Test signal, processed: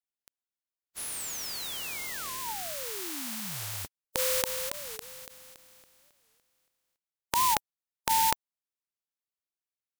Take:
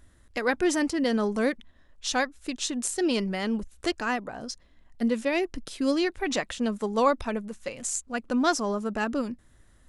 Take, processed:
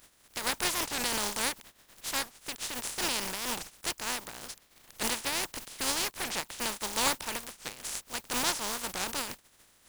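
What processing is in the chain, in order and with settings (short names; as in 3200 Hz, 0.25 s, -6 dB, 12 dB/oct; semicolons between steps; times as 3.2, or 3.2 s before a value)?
spectral contrast lowered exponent 0.21; dynamic EQ 910 Hz, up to +7 dB, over -50 dBFS, Q 7.6; record warp 45 rpm, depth 250 cents; gain -6 dB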